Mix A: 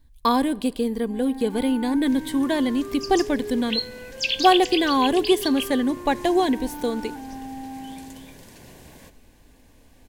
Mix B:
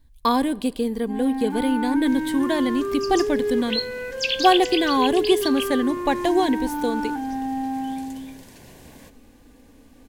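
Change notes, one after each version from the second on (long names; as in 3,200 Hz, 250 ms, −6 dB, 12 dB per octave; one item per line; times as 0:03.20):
first sound +9.0 dB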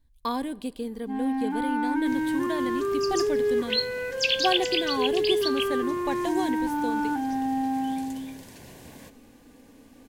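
speech −9.0 dB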